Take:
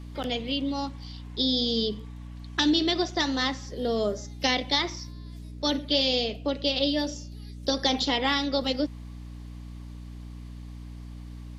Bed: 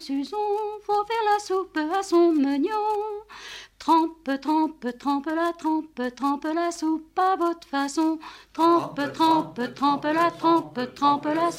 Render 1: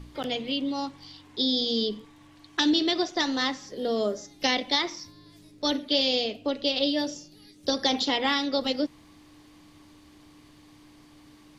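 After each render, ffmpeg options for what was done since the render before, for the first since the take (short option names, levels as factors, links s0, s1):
-af "bandreject=f=60:t=h:w=4,bandreject=f=120:t=h:w=4,bandreject=f=180:t=h:w=4,bandreject=f=240:t=h:w=4"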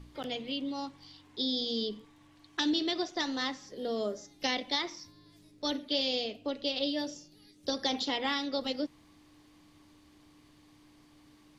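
-af "volume=0.473"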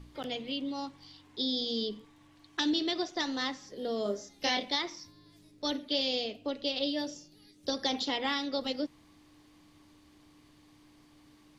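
-filter_complex "[0:a]asettb=1/sr,asplit=3[s0][s1][s2];[s0]atrim=end=4.034[s3];[s1]atrim=start=4.03:end=4.72,asetpts=PTS-STARTPTS,afade=t=in:d=0.004:c=qsin,afade=t=out:st=0.686:d=0.004:c=qsin,asplit=2[s4][s5];[s5]adelay=25,volume=0.75[s6];[s4][s6]amix=inputs=2:normalize=0,atrim=end_sample=30429[s7];[s2]atrim=start=4.716[s8];[s3][s7]acrossfade=d=0.004:c1=hsin:c2=qsin[s9];[s9][s8]acrossfade=d=0.004:c1=qsin:c2=hsin"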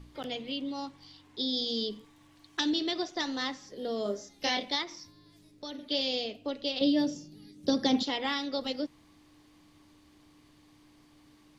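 -filter_complex "[0:a]asettb=1/sr,asplit=3[s0][s1][s2];[s0]atrim=end=1.534[s3];[s1]atrim=start=1.53:end=2.61,asetpts=PTS-STARTPTS,afade=t=in:d=0.004:c=qsin,afade=t=out:st=1.076:d=0.004:c=qsin,highshelf=f=5400:g=5.5[s4];[s2]atrim=start=2.606[s5];[s3][s4]acrossfade=d=0.004:c1=hsin:c2=qsin[s6];[s6][s5]acrossfade=d=0.004:c1=qsin:c2=hsin,asettb=1/sr,asplit=3[s7][s8][s9];[s7]atrim=end=4.834[s10];[s8]atrim=start=4.83:end=5.79,asetpts=PTS-STARTPTS,afade=t=in:d=0.004:c=qsin,afade=t=out:st=0.956:d=0.004:c=qsin,acompressor=threshold=0.0126:ratio=4:attack=3.2:release=140:knee=1:detection=peak[s11];[s9]atrim=start=5.786[s12];[s10][s11]acrossfade=d=0.004:c1=hsin:c2=qsin[s13];[s13][s12]acrossfade=d=0.004:c1=qsin:c2=hsin,asettb=1/sr,asplit=3[s14][s15][s16];[s14]atrim=end=6.814[s17];[s15]atrim=start=6.81:end=8.03,asetpts=PTS-STARTPTS,afade=t=in:d=0.004:c=qsin,afade=t=out:st=1.216:d=0.004:c=qsin,equalizer=f=190:w=0.68:g=13[s18];[s16]atrim=start=8.026[s19];[s17][s18]acrossfade=d=0.004:c1=hsin:c2=qsin[s20];[s20][s19]acrossfade=d=0.004:c1=qsin:c2=hsin"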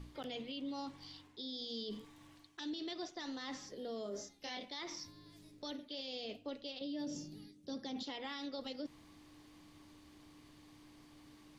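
-af "areverse,acompressor=threshold=0.0112:ratio=6,areverse,alimiter=level_in=3.55:limit=0.0631:level=0:latency=1:release=42,volume=0.282"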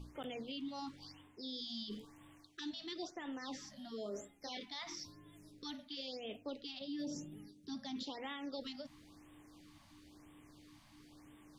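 -af "afftfilt=real='re*(1-between(b*sr/1024,380*pow(5300/380,0.5+0.5*sin(2*PI*0.99*pts/sr))/1.41,380*pow(5300/380,0.5+0.5*sin(2*PI*0.99*pts/sr))*1.41))':imag='im*(1-between(b*sr/1024,380*pow(5300/380,0.5+0.5*sin(2*PI*0.99*pts/sr))/1.41,380*pow(5300/380,0.5+0.5*sin(2*PI*0.99*pts/sr))*1.41))':win_size=1024:overlap=0.75"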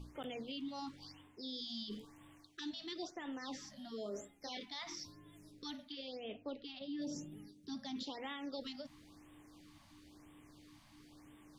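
-filter_complex "[0:a]asettb=1/sr,asplit=3[s0][s1][s2];[s0]atrim=end=5.924[s3];[s1]atrim=start=5.92:end=7.02,asetpts=PTS-STARTPTS,afade=t=in:d=0.004:c=qsin,afade=t=out:st=1.096:d=0.004:c=qsin,lowpass=3500[s4];[s2]atrim=start=7.016[s5];[s3][s4]acrossfade=d=0.004:c1=hsin:c2=qsin[s6];[s6][s5]acrossfade=d=0.004:c1=qsin:c2=hsin"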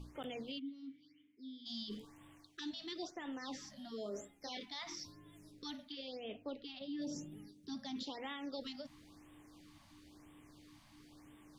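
-filter_complex "[0:a]asplit=3[s0][s1][s2];[s0]afade=t=out:st=0.58:d=0.02[s3];[s1]asplit=3[s4][s5][s6];[s4]bandpass=f=270:t=q:w=8,volume=1[s7];[s5]bandpass=f=2290:t=q:w=8,volume=0.501[s8];[s6]bandpass=f=3010:t=q:w=8,volume=0.355[s9];[s7][s8][s9]amix=inputs=3:normalize=0,afade=t=in:st=0.58:d=0.02,afade=t=out:st=1.65:d=0.02[s10];[s2]afade=t=in:st=1.65:d=0.02[s11];[s3][s10][s11]amix=inputs=3:normalize=0"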